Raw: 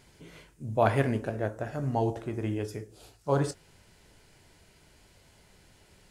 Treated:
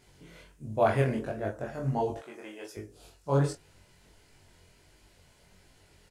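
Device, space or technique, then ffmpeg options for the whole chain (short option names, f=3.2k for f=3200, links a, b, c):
double-tracked vocal: -filter_complex "[0:a]asettb=1/sr,asplit=3[a][b][c];[a]atrim=end=2.174[d];[b]atrim=start=2.17:end=2.77,asetpts=PTS-STARTPTS,afade=t=in:d=0.004:c=qsin,afade=t=out:st=0.596:d=0.004:c=qsin,highpass=550[e];[c]atrim=start=2.766[f];[d][e]acrossfade=d=0.004:c1=hsin:c2=qsin[g];[g][f]acrossfade=d=0.004:c1=qsin:c2=hsin,asplit=2[h][i];[i]adelay=22,volume=-4dB[j];[h][j]amix=inputs=2:normalize=0,flanger=delay=19:depth=5.1:speed=1.4"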